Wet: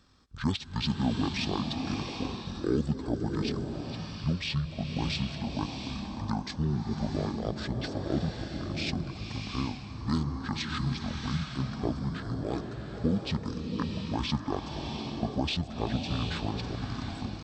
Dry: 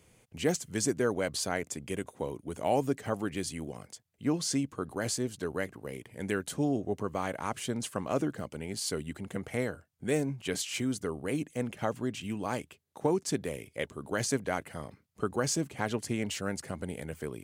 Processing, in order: pitch shift -11 st; swelling reverb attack 740 ms, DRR 3 dB

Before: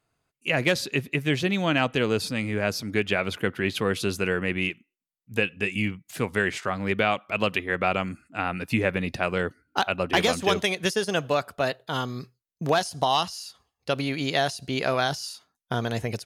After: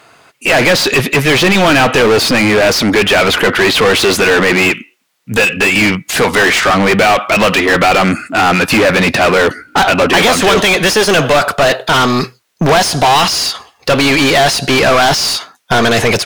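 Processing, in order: overdrive pedal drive 36 dB, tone 3.5 kHz, clips at -8.5 dBFS; trim +6.5 dB

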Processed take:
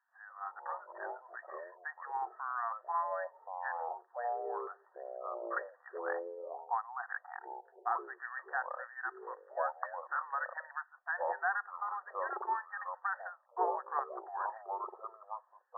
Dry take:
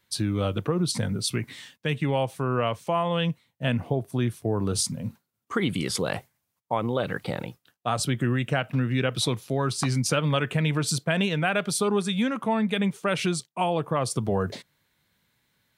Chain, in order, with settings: brick-wall FIR band-pass 700–1900 Hz; ever faster or slower copies 83 ms, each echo -6 st, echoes 2; trim -5 dB

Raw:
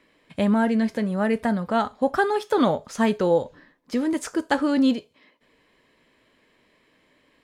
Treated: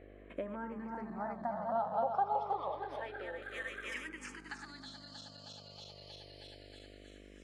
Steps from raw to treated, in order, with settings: backward echo that repeats 158 ms, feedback 79%, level -5.5 dB; 3.42–4.09 s: RIAA curve recording; compression 6:1, threshold -37 dBFS, peak gain reduction 21 dB; band-pass sweep 740 Hz -> 5.1 kHz, 2.04–5.31 s; mains buzz 50 Hz, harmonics 14, -65 dBFS -2 dB/octave; barber-pole phaser -0.29 Hz; trim +11.5 dB

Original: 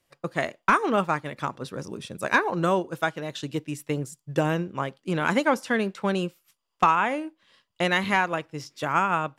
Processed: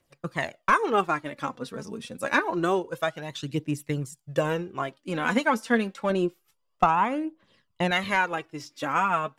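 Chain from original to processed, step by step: 6.10–7.91 s: tilt shelf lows +5 dB, about 1.2 kHz; phaser 0.27 Hz, delay 4.7 ms, feedback 55%; trim -2.5 dB

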